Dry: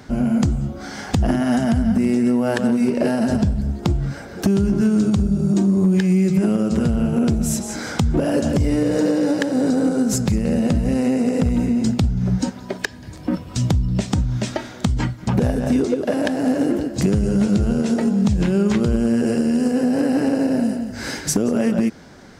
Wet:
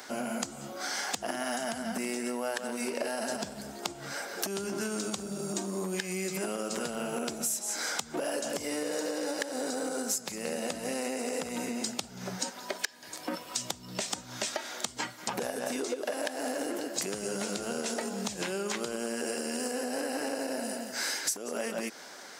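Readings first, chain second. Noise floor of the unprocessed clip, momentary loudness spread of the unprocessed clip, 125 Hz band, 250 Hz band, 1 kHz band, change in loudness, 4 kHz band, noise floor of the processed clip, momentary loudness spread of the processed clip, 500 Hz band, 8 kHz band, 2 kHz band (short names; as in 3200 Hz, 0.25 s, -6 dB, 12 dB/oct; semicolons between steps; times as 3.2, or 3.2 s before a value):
-37 dBFS, 7 LU, -27.0 dB, -20.0 dB, -6.5 dB, -14.0 dB, -2.5 dB, -47 dBFS, 4 LU, -10.5 dB, -1.5 dB, -5.0 dB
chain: HPF 580 Hz 12 dB/oct; high shelf 5500 Hz +10.5 dB; compressor, threshold -30 dBFS, peak gain reduction 17 dB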